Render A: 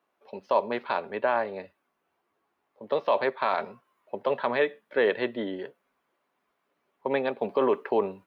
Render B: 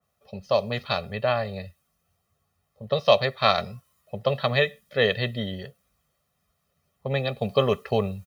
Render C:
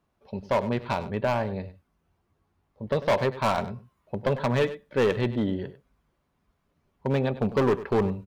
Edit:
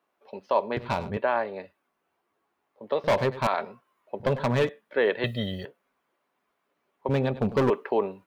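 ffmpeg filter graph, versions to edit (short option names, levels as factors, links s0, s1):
-filter_complex "[2:a]asplit=4[s0][s1][s2][s3];[0:a]asplit=6[s4][s5][s6][s7][s8][s9];[s4]atrim=end=0.772[s10];[s0]atrim=start=0.768:end=1.172[s11];[s5]atrim=start=1.168:end=3.042[s12];[s1]atrim=start=3.038:end=3.472[s13];[s6]atrim=start=3.468:end=4.202[s14];[s2]atrim=start=4.198:end=4.692[s15];[s7]atrim=start=4.688:end=5.242[s16];[1:a]atrim=start=5.238:end=5.652[s17];[s8]atrim=start=5.648:end=7.092[s18];[s3]atrim=start=7.088:end=7.702[s19];[s9]atrim=start=7.698[s20];[s10][s11]acrossfade=d=0.004:c1=hsin:c2=hsin[s21];[s21][s12]acrossfade=d=0.004:c1=hsin:c2=hsin[s22];[s22][s13]acrossfade=d=0.004:c1=hsin:c2=hsin[s23];[s23][s14]acrossfade=d=0.004:c1=hsin:c2=hsin[s24];[s24][s15]acrossfade=d=0.004:c1=hsin:c2=hsin[s25];[s25][s16]acrossfade=d=0.004:c1=hsin:c2=hsin[s26];[s26][s17]acrossfade=d=0.004:c1=hsin:c2=hsin[s27];[s27][s18]acrossfade=d=0.004:c1=hsin:c2=hsin[s28];[s28][s19]acrossfade=d=0.004:c1=hsin:c2=hsin[s29];[s29][s20]acrossfade=d=0.004:c1=hsin:c2=hsin"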